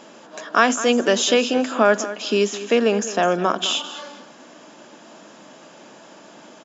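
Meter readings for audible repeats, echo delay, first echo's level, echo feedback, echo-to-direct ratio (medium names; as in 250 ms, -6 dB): 2, 208 ms, -14.0 dB, 21%, -14.0 dB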